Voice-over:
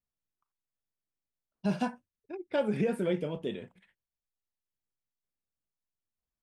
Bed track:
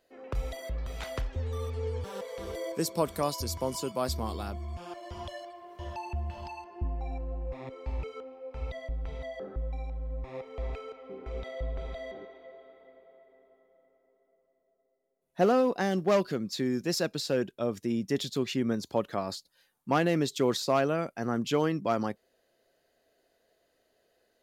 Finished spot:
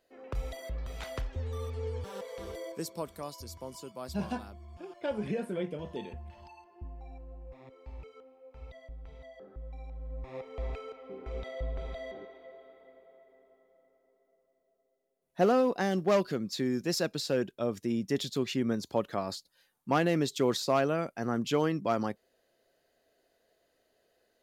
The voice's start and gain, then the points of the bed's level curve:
2.50 s, −4.5 dB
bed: 0:02.42 −2.5 dB
0:03.17 −11 dB
0:09.48 −11 dB
0:10.42 −1 dB

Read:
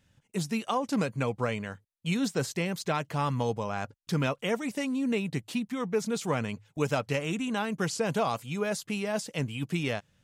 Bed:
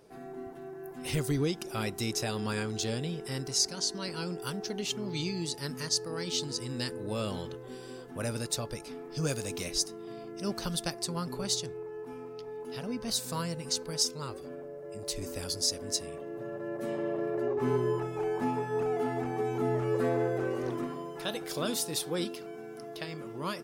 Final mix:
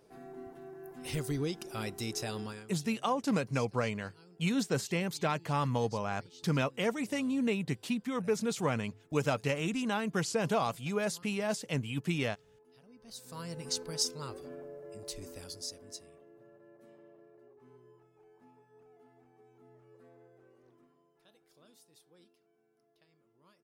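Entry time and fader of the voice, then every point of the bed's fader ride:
2.35 s, −2.0 dB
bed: 0:02.41 −4.5 dB
0:02.74 −23 dB
0:12.92 −23 dB
0:13.61 −3 dB
0:14.72 −3 dB
0:17.64 −30.5 dB

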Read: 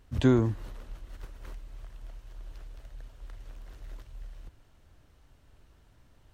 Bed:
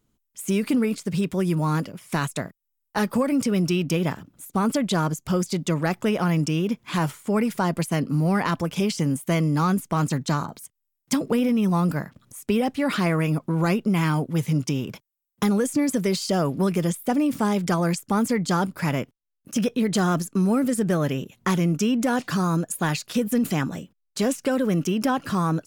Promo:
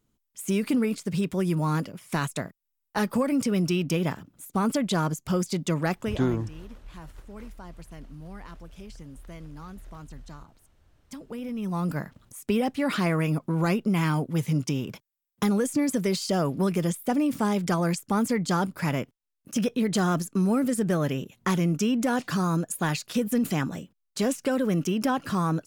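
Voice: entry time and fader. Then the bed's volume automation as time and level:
5.95 s, −3.0 dB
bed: 0:05.94 −2.5 dB
0:06.45 −21.5 dB
0:10.98 −21.5 dB
0:12.03 −2.5 dB

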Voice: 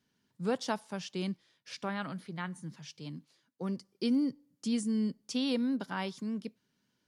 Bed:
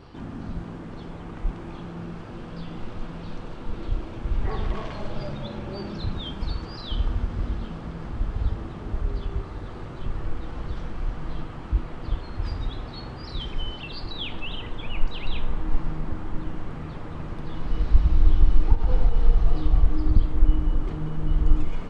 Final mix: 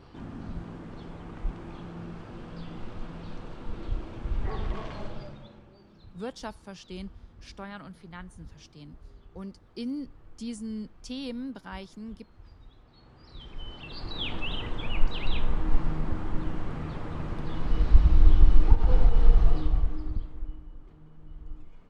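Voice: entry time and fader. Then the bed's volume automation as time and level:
5.75 s, −5.0 dB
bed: 0:05.03 −4.5 dB
0:05.78 −22.5 dB
0:12.82 −22.5 dB
0:14.28 0 dB
0:19.44 0 dB
0:20.67 −22.5 dB

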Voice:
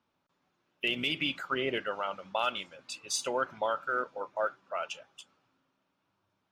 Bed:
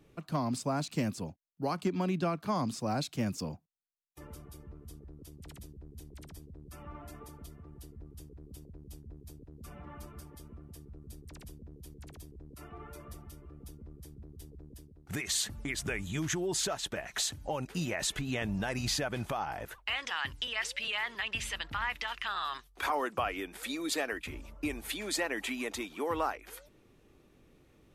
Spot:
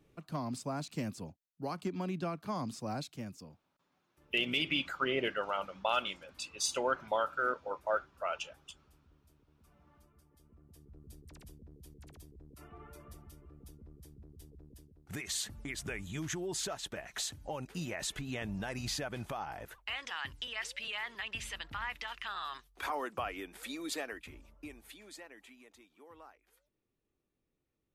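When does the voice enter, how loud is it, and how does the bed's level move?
3.50 s, −1.0 dB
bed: 0:02.95 −5.5 dB
0:03.65 −18 dB
0:10.23 −18 dB
0:11.00 −5 dB
0:23.90 −5 dB
0:25.68 −23 dB

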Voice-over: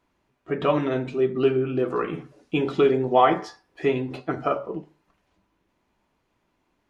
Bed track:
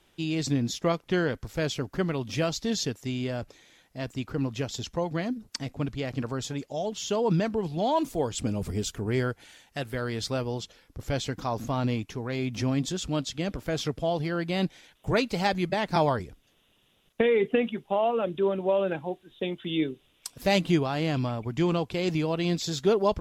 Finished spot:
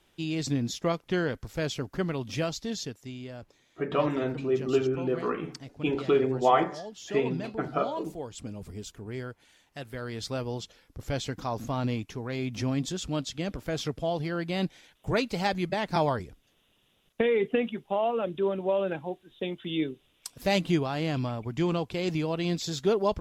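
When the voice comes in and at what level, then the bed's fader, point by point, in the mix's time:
3.30 s, −4.5 dB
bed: 0:02.36 −2 dB
0:03.23 −10 dB
0:09.40 −10 dB
0:10.51 −2 dB

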